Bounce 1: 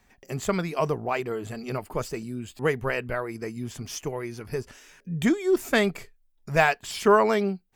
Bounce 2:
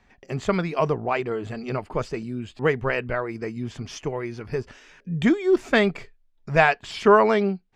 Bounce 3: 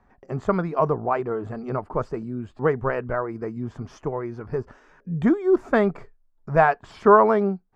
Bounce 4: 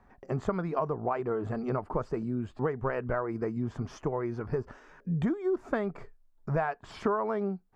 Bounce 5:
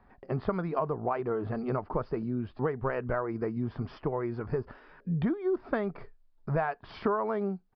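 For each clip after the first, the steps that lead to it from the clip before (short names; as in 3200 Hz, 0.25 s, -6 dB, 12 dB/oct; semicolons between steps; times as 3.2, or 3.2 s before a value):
LPF 4200 Hz 12 dB/oct; gain +3 dB
resonant high shelf 1800 Hz -12.5 dB, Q 1.5
compressor 8:1, threshold -26 dBFS, peak gain reduction 17 dB
downsampling 11025 Hz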